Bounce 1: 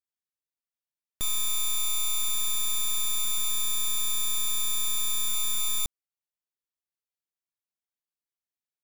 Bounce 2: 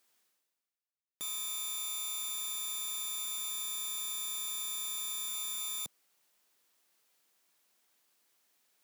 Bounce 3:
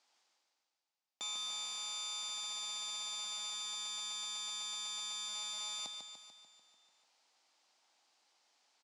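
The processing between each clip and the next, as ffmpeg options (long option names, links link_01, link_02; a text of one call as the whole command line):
ffmpeg -i in.wav -af "highpass=220,areverse,acompressor=mode=upward:threshold=-42dB:ratio=2.5,areverse,volume=-8dB" out.wav
ffmpeg -i in.wav -af "highpass=300,equalizer=frequency=410:width_type=q:width=4:gain=-7,equalizer=frequency=820:width_type=q:width=4:gain=9,equalizer=frequency=1700:width_type=q:width=4:gain=-3,equalizer=frequency=4800:width_type=q:width=4:gain=4,lowpass=frequency=6900:width=0.5412,lowpass=frequency=6900:width=1.3066,aecho=1:1:147|294|441|588|735|882|1029|1176:0.501|0.301|0.18|0.108|0.065|0.039|0.0234|0.014,volume=1dB" out.wav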